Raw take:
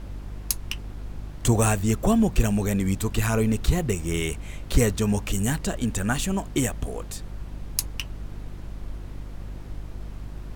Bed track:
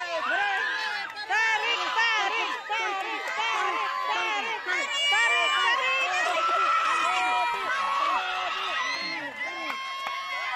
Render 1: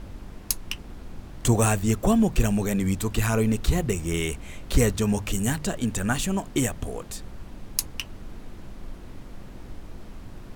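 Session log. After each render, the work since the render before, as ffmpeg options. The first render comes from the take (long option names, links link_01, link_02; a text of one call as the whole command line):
ffmpeg -i in.wav -af "bandreject=frequency=50:width_type=h:width=4,bandreject=frequency=100:width_type=h:width=4,bandreject=frequency=150:width_type=h:width=4" out.wav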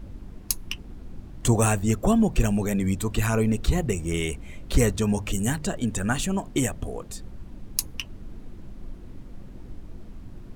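ffmpeg -i in.wav -af "afftdn=noise_reduction=8:noise_floor=-42" out.wav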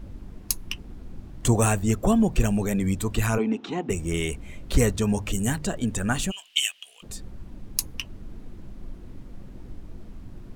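ffmpeg -i in.wav -filter_complex "[0:a]asplit=3[link_01][link_02][link_03];[link_01]afade=type=out:start_time=3.37:duration=0.02[link_04];[link_02]highpass=frequency=220:width=0.5412,highpass=frequency=220:width=1.3066,equalizer=frequency=270:width_type=q:width=4:gain=6,equalizer=frequency=560:width_type=q:width=4:gain=-8,equalizer=frequency=840:width_type=q:width=4:gain=8,equalizer=frequency=1900:width_type=q:width=4:gain=-4,equalizer=frequency=4500:width_type=q:width=4:gain=-10,lowpass=frequency=4900:width=0.5412,lowpass=frequency=4900:width=1.3066,afade=type=in:start_time=3.37:duration=0.02,afade=type=out:start_time=3.89:duration=0.02[link_05];[link_03]afade=type=in:start_time=3.89:duration=0.02[link_06];[link_04][link_05][link_06]amix=inputs=3:normalize=0,asplit=3[link_07][link_08][link_09];[link_07]afade=type=out:start_time=6.3:duration=0.02[link_10];[link_08]highpass=frequency=2900:width_type=q:width=8.3,afade=type=in:start_time=6.3:duration=0.02,afade=type=out:start_time=7.02:duration=0.02[link_11];[link_09]afade=type=in:start_time=7.02:duration=0.02[link_12];[link_10][link_11][link_12]amix=inputs=3:normalize=0" out.wav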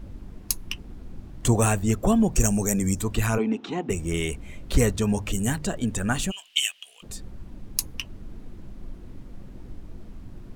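ffmpeg -i in.wav -filter_complex "[0:a]asettb=1/sr,asplit=3[link_01][link_02][link_03];[link_01]atrim=end=2.354[link_04];[link_02]atrim=start=2.35:end=3.01,asetpts=PTS-STARTPTS,afade=type=in:duration=0.004:curve=qsin,afade=type=out:start_time=0.656:duration=0.004:curve=qsin,highshelf=frequency=4800:width_type=q:width=3:gain=8[link_05];[link_03]atrim=start=3.006[link_06];[link_04][link_05]acrossfade=duration=0.004:curve1=hsin:curve2=qsin[link_07];[link_07][link_06]acrossfade=duration=0.004:curve1=qsin:curve2=hsin" out.wav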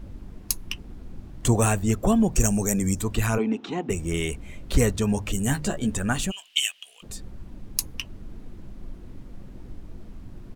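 ffmpeg -i in.wav -filter_complex "[0:a]asplit=3[link_01][link_02][link_03];[link_01]afade=type=out:start_time=5.48:duration=0.02[link_04];[link_02]asplit=2[link_05][link_06];[link_06]adelay=14,volume=-5dB[link_07];[link_05][link_07]amix=inputs=2:normalize=0,afade=type=in:start_time=5.48:duration=0.02,afade=type=out:start_time=5.96:duration=0.02[link_08];[link_03]afade=type=in:start_time=5.96:duration=0.02[link_09];[link_04][link_08][link_09]amix=inputs=3:normalize=0" out.wav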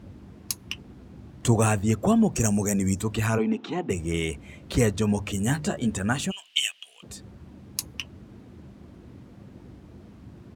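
ffmpeg -i in.wav -af "highpass=frequency=72:width=0.5412,highpass=frequency=72:width=1.3066,highshelf=frequency=9400:gain=-8" out.wav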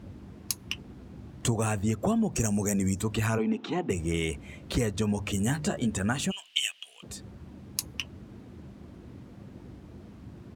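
ffmpeg -i in.wav -af "acompressor=threshold=-23dB:ratio=6" out.wav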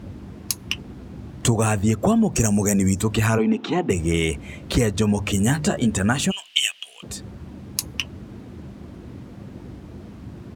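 ffmpeg -i in.wav -af "volume=8dB,alimiter=limit=-2dB:level=0:latency=1" out.wav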